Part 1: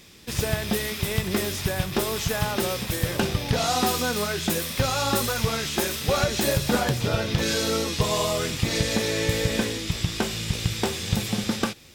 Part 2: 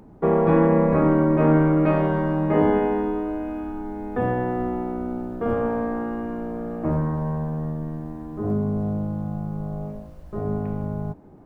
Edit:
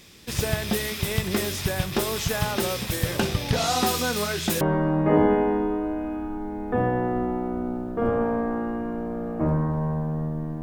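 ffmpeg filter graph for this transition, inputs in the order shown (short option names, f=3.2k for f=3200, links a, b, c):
-filter_complex "[0:a]apad=whole_dur=10.62,atrim=end=10.62,atrim=end=4.612[a];[1:a]atrim=start=2.048:end=8.06[b];[a][b]acrossfade=d=0.004:c1=hsin:c2=hsin"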